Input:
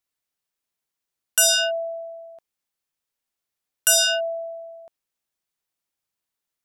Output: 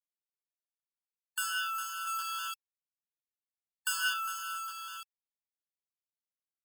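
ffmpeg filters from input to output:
-filter_complex "[0:a]asuperstop=centerf=4700:order=8:qfactor=3.8,tiltshelf=f=1.3k:g=10,aecho=1:1:405|810|1215:0.282|0.0535|0.0102,acrusher=bits=3:dc=4:mix=0:aa=0.000001,asettb=1/sr,asplit=3[a][b][c];[a]atrim=end=2.074[d];[b]atrim=start=2.07:end=4.14,asetpts=PTS-STARTPTS,afade=t=in:d=0.004:c=qsin,afade=t=out:st=2.066:d=0.004:c=qsin,acontrast=50[e];[c]atrim=start=4.136[f];[d][e]acrossfade=d=0.004:c1=hsin:c2=qsin[g];[g][f]acrossfade=d=0.004:c1=qsin:c2=hsin,asoftclip=type=hard:threshold=-18dB,afftfilt=real='re*eq(mod(floor(b*sr/1024/880),2),1)':imag='im*eq(mod(floor(b*sr/1024/880),2),1)':win_size=1024:overlap=0.75,volume=-1dB"

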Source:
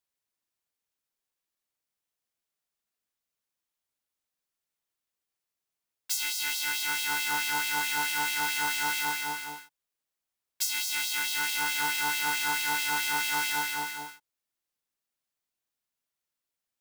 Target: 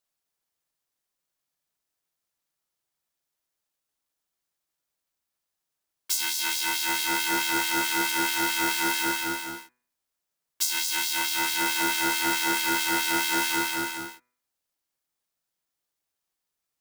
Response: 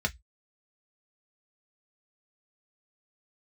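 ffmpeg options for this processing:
-filter_complex "[0:a]aeval=exprs='val(0)*sin(2*PI*550*n/s)':c=same,bandreject=f=123.1:t=h:w=4,bandreject=f=246.2:t=h:w=4,bandreject=f=369.3:t=h:w=4,bandreject=f=492.4:t=h:w=4,bandreject=f=615.5:t=h:w=4,bandreject=f=738.6:t=h:w=4,bandreject=f=861.7:t=h:w=4,bandreject=f=984.8:t=h:w=4,bandreject=f=1.1079k:t=h:w=4,bandreject=f=1.231k:t=h:w=4,bandreject=f=1.3541k:t=h:w=4,bandreject=f=1.4772k:t=h:w=4,bandreject=f=1.6003k:t=h:w=4,bandreject=f=1.7234k:t=h:w=4,bandreject=f=1.8465k:t=h:w=4,bandreject=f=1.9696k:t=h:w=4,bandreject=f=2.0927k:t=h:w=4,bandreject=f=2.2158k:t=h:w=4,bandreject=f=2.3389k:t=h:w=4,bandreject=f=2.462k:t=h:w=4,asplit=2[a][b];[1:a]atrim=start_sample=2205,lowpass=5k[c];[b][c]afir=irnorm=-1:irlink=0,volume=-21dB[d];[a][d]amix=inputs=2:normalize=0,volume=6.5dB"

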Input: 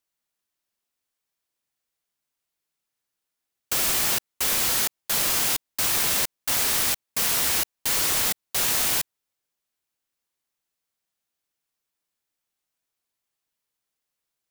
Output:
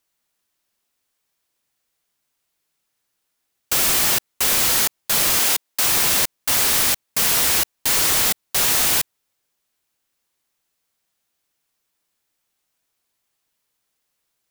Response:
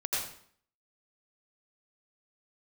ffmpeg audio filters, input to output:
-filter_complex "[0:a]asettb=1/sr,asplit=3[a][b][c];[a]atrim=end=5.394[d];[b]atrim=start=5.39:end=5.86,asetpts=PTS-STARTPTS,afade=t=in:d=0.004:c=qsin,afade=t=out:st=0.466:d=0.004:c=qsin,highpass=270[e];[c]atrim=start=5.856[f];[d][e]acrossfade=d=0.004:c1=hsin:c2=qsin[g];[g][f]acrossfade=d=0.004:c1=qsin:c2=hsin,asoftclip=type=tanh:threshold=-21.5dB,volume=8.5dB"

